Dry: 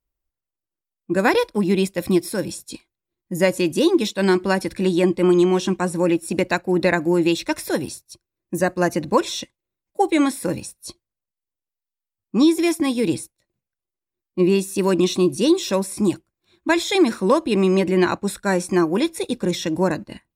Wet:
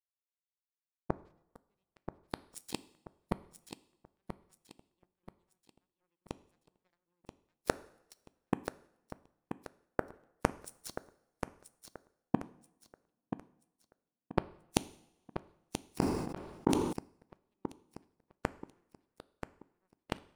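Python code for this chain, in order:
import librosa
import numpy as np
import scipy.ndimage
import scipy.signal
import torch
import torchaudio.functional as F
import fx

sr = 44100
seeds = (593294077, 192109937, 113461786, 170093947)

p1 = fx.gate_flip(x, sr, shuts_db=-19.0, range_db=-30)
p2 = fx.power_curve(p1, sr, exponent=3.0)
p3 = p2 + fx.echo_feedback(p2, sr, ms=982, feedback_pct=35, wet_db=-9, dry=0)
p4 = fx.rev_double_slope(p3, sr, seeds[0], early_s=0.67, late_s=2.5, knee_db=-25, drr_db=16.0)
p5 = fx.sustainer(p4, sr, db_per_s=43.0, at=(15.98, 16.93))
y = F.gain(torch.from_numpy(p5), 13.5).numpy()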